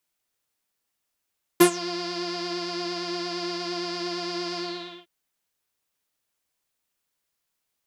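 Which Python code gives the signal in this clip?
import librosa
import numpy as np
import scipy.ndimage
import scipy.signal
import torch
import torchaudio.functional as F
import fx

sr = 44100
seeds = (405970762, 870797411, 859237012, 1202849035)

y = fx.sub_patch_pwm(sr, seeds[0], note=65, wave2='saw', interval_st=0, detune_cents=16, level2_db=-9.0, sub_db=-14, noise_db=-30.0, kind='lowpass', cutoff_hz=3200.0, q=7.3, env_oct=2.0, env_decay_s=0.18, env_sustain_pct=30, attack_ms=12.0, decay_s=0.09, sustain_db=-19, release_s=0.48, note_s=2.98, lfo_hz=8.7, width_pct=37, width_swing_pct=20)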